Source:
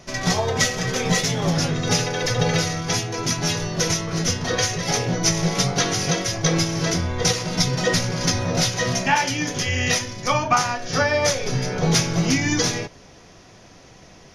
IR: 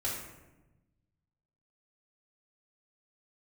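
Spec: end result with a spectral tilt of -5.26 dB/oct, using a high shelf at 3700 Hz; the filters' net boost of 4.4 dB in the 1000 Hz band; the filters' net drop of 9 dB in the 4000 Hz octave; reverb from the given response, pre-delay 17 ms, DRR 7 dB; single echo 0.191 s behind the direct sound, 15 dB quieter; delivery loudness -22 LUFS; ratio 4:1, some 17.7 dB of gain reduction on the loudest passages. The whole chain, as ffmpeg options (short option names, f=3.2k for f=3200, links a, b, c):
-filter_complex "[0:a]equalizer=f=1k:t=o:g=6.5,highshelf=f=3.7k:g=-6,equalizer=f=4k:t=o:g=-8,acompressor=threshold=-32dB:ratio=4,aecho=1:1:191:0.178,asplit=2[a][b];[1:a]atrim=start_sample=2205,adelay=17[c];[b][c]afir=irnorm=-1:irlink=0,volume=-11.5dB[d];[a][d]amix=inputs=2:normalize=0,volume=10.5dB"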